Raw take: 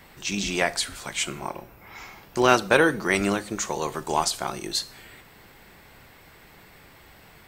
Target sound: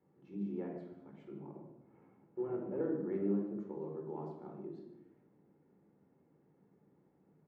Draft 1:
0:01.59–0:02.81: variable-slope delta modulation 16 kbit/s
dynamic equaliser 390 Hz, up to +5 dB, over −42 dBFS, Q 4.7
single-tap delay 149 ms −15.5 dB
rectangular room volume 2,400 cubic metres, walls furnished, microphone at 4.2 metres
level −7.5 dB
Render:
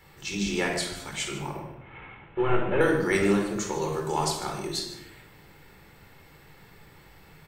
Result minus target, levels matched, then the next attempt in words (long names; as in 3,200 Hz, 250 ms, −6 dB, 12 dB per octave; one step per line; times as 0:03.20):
250 Hz band −3.5 dB
0:01.59–0:02.81: variable-slope delta modulation 16 kbit/s
dynamic equaliser 390 Hz, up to +5 dB, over −42 dBFS, Q 4.7
four-pole ladder band-pass 280 Hz, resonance 35%
single-tap delay 149 ms −15.5 dB
rectangular room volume 2,400 cubic metres, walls furnished, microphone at 4.2 metres
level −7.5 dB